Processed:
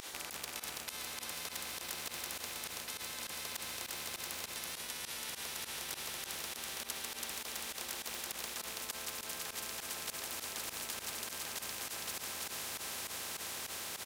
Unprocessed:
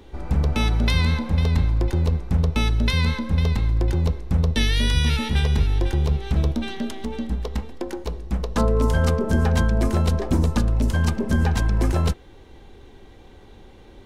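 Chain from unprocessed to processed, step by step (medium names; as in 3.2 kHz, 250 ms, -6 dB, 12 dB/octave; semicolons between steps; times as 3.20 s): rattle on loud lows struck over -27 dBFS, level -31 dBFS; peak limiter -18.5 dBFS, peak gain reduction 9.5 dB; high-pass 840 Hz 12 dB/octave; echo that smears into a reverb 522 ms, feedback 70%, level -7 dB; reverse; compression, threshold -44 dBFS, peak gain reduction 15 dB; reverse; treble shelf 2.5 kHz +7.5 dB; on a send: delay 330 ms -3 dB; on the sum: volume shaper 101 bpm, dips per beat 2, -19 dB, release 87 ms; spectrum-flattening compressor 4:1; trim +4.5 dB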